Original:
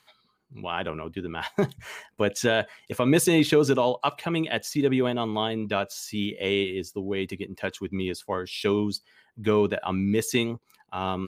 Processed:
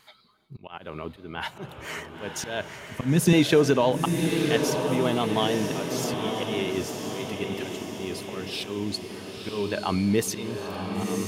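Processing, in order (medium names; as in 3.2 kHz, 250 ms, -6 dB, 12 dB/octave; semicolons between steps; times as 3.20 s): 2.77–3.33 s: resonant low shelf 290 Hz +10 dB, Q 1.5; slow attack 371 ms; in parallel at -1.5 dB: compression, threshold -37 dBFS, peak gain reduction 20 dB; on the sum: vibrato 6 Hz 40 cents; echo that smears into a reverb 985 ms, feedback 54%, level -5 dB; on a send at -20 dB: reverberation, pre-delay 3 ms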